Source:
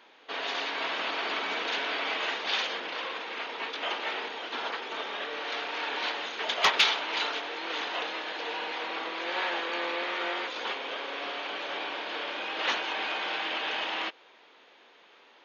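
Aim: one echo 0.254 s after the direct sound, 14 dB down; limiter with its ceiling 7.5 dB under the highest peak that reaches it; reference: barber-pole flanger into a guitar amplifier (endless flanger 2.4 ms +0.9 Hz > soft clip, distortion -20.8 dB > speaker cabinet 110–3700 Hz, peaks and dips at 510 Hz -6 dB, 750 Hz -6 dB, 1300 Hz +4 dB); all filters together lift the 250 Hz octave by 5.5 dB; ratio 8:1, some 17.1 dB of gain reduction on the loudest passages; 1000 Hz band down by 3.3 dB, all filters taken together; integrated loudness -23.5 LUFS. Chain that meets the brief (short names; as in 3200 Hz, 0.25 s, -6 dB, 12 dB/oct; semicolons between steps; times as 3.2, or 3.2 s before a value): bell 250 Hz +9 dB; bell 1000 Hz -4.5 dB; compressor 8:1, threshold -37 dBFS; limiter -32.5 dBFS; echo 0.254 s -14 dB; endless flanger 2.4 ms +0.9 Hz; soft clip -37 dBFS; speaker cabinet 110–3700 Hz, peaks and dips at 510 Hz -6 dB, 750 Hz -6 dB, 1300 Hz +4 dB; gain +22 dB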